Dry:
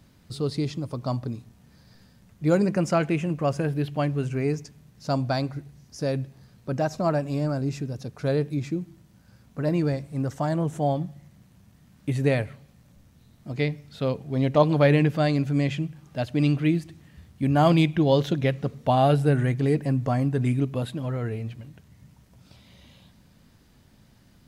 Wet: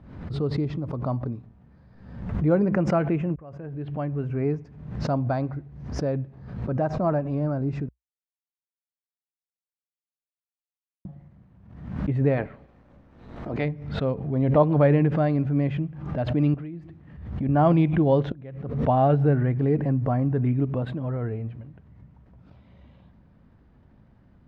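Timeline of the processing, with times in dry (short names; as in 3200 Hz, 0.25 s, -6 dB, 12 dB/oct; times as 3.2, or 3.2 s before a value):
3.36–4.46 fade in
7.89–11.05 mute
12.36–13.64 spectral limiter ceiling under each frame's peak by 15 dB
16.54–17.49 compressor 16:1, threshold -32 dBFS
18.32–18.89 fade in quadratic, from -24 dB
whole clip: LPF 1400 Hz 12 dB/oct; bell 61 Hz +6 dB 0.48 oct; backwards sustainer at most 62 dB/s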